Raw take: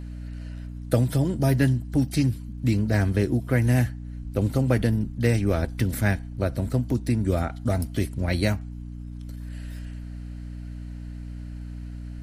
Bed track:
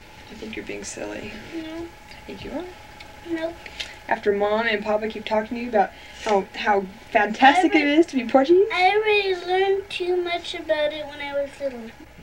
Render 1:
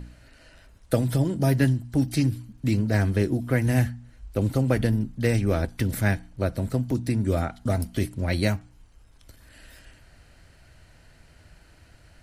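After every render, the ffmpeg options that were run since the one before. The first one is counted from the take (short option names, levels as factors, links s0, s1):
-af "bandreject=f=60:t=h:w=4,bandreject=f=120:t=h:w=4,bandreject=f=180:t=h:w=4,bandreject=f=240:t=h:w=4,bandreject=f=300:t=h:w=4"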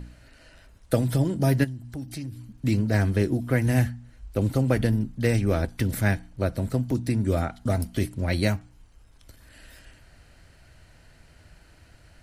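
-filter_complex "[0:a]asplit=3[s0][s1][s2];[s0]afade=t=out:st=1.63:d=0.02[s3];[s1]acompressor=threshold=0.0141:ratio=2.5:attack=3.2:release=140:knee=1:detection=peak,afade=t=in:st=1.63:d=0.02,afade=t=out:st=2.46:d=0.02[s4];[s2]afade=t=in:st=2.46:d=0.02[s5];[s3][s4][s5]amix=inputs=3:normalize=0"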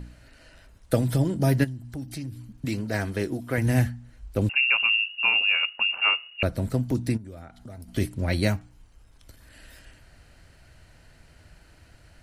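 -filter_complex "[0:a]asettb=1/sr,asplit=3[s0][s1][s2];[s0]atrim=end=2.654[s3];[s1]atrim=start=2.65:end=3.58,asetpts=PTS-STARTPTS,afade=t=in:d=0.004:c=qsin,afade=t=out:st=0.926:d=0.004:c=qsin,lowshelf=f=240:g=-10.5[s4];[s2]atrim=start=3.576[s5];[s3][s4]acrossfade=d=0.004:c1=hsin:c2=qsin[s6];[s6][s5]acrossfade=d=0.004:c1=qsin:c2=hsin,asettb=1/sr,asplit=3[s7][s8][s9];[s7]atrim=end=4.494[s10];[s8]atrim=start=4.49:end=6.43,asetpts=PTS-STARTPTS,afade=t=in:d=0.004:c=qsin,afade=t=out:st=1.936:d=0.004:c=qsin,lowpass=f=2500:t=q:w=0.5098,lowpass=f=2500:t=q:w=0.6013,lowpass=f=2500:t=q:w=0.9,lowpass=f=2500:t=q:w=2.563,afreqshift=-2900[s11];[s9]atrim=start=6.426[s12];[s10][s11]acrossfade=d=0.004:c1=hsin:c2=qsin[s13];[s13][s12]acrossfade=d=0.004:c1=qsin:c2=hsin,asplit=3[s14][s15][s16];[s14]afade=t=out:st=7.16:d=0.02[s17];[s15]acompressor=threshold=0.00631:ratio=3:attack=3.2:release=140:knee=1:detection=peak,afade=t=in:st=7.16:d=0.02,afade=t=out:st=7.87:d=0.02[s18];[s16]afade=t=in:st=7.87:d=0.02[s19];[s17][s18][s19]amix=inputs=3:normalize=0"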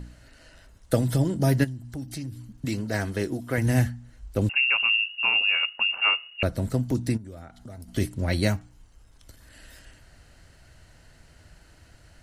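-af "equalizer=f=6800:t=o:w=0.77:g=3.5,bandreject=f=2400:w=18"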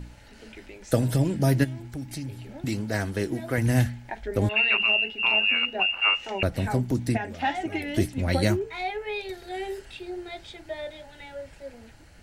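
-filter_complex "[1:a]volume=0.224[s0];[0:a][s0]amix=inputs=2:normalize=0"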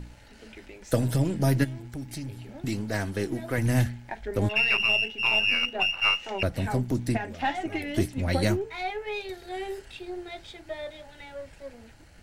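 -af "aeval=exprs='if(lt(val(0),0),0.708*val(0),val(0))':c=same"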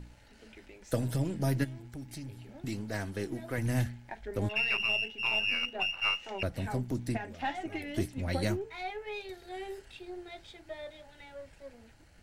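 -af "volume=0.473"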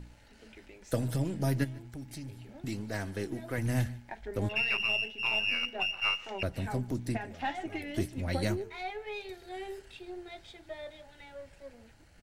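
-af "aecho=1:1:146:0.0794"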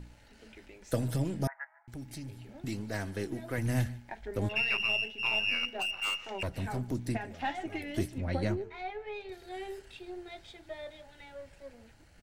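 -filter_complex "[0:a]asettb=1/sr,asplit=3[s0][s1][s2];[s0]atrim=end=1.474[s3];[s1]atrim=start=1.47:end=1.88,asetpts=PTS-STARTPTS,afade=t=in:d=0.004:c=qsin,afade=t=out:st=0.406:d=0.004:c=qsin,asuperpass=centerf=1200:order=12:qfactor=0.96[s4];[s2]atrim=start=1.876[s5];[s3][s4]acrossfade=d=0.004:c1=hsin:c2=qsin[s6];[s6][s5]acrossfade=d=0.004:c1=qsin:c2=hsin,asettb=1/sr,asplit=3[s7][s8][s9];[s7]atrim=end=5.674[s10];[s8]atrim=start=5.67:end=6.87,asetpts=PTS-STARTPTS,afade=t=in:d=0.004:c=qsin,afade=t=out:st=1.196:d=0.004:c=qsin,volume=28.2,asoftclip=hard,volume=0.0355[s11];[s9]atrim=start=6.866[s12];[s10][s11]acrossfade=d=0.004:c1=hsin:c2=qsin[s13];[s13][s12]acrossfade=d=0.004:c1=qsin:c2=hsin,asettb=1/sr,asplit=3[s14][s15][s16];[s14]atrim=end=8.184[s17];[s15]atrim=start=8.18:end=9.32,asetpts=PTS-STARTPTS,afade=t=in:d=0.004:c=qsin,afade=t=out:st=1.136:d=0.004:c=qsin,aemphasis=mode=reproduction:type=75kf[s18];[s16]atrim=start=9.316[s19];[s17][s18]acrossfade=d=0.004:c1=hsin:c2=qsin[s20];[s20][s19]acrossfade=d=0.004:c1=qsin:c2=hsin"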